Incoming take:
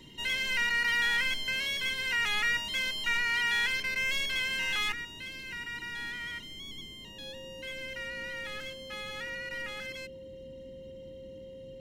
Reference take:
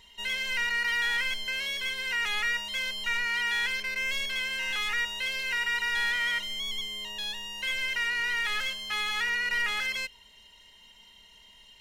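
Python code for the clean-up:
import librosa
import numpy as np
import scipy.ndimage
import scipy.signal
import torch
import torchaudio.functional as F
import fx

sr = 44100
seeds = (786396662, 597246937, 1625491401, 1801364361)

y = fx.notch(x, sr, hz=530.0, q=30.0)
y = fx.noise_reduce(y, sr, print_start_s=10.15, print_end_s=10.65, reduce_db=9.0)
y = fx.fix_level(y, sr, at_s=4.92, step_db=10.5)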